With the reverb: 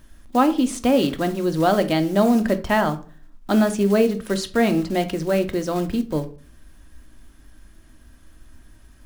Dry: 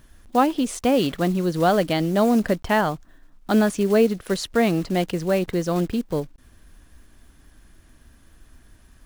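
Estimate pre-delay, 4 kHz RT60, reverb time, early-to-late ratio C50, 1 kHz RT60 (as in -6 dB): 3 ms, 0.30 s, 0.40 s, 15.0 dB, 0.40 s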